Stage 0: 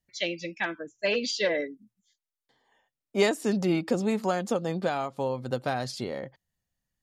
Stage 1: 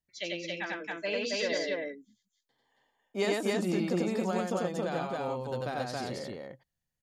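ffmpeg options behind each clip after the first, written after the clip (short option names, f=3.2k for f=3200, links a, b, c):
-af "aecho=1:1:93.29|274.1:0.891|0.891,volume=-7.5dB"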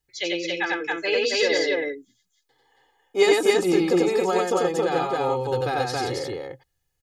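-af "aecho=1:1:2.4:0.88,volume=7.5dB"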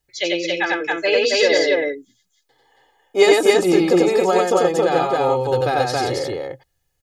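-af "equalizer=f=620:w=6.7:g=10,volume=4.5dB"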